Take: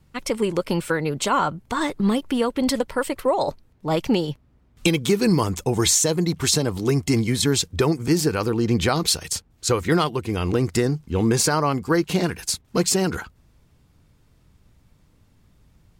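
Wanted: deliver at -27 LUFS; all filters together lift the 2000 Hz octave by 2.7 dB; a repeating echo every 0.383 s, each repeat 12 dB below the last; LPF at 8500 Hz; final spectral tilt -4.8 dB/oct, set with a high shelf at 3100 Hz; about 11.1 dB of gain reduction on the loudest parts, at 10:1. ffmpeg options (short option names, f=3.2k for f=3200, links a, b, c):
-af "lowpass=8.5k,equalizer=f=2k:t=o:g=6.5,highshelf=f=3.1k:g=-8.5,acompressor=threshold=-26dB:ratio=10,aecho=1:1:383|766|1149:0.251|0.0628|0.0157,volume=4dB"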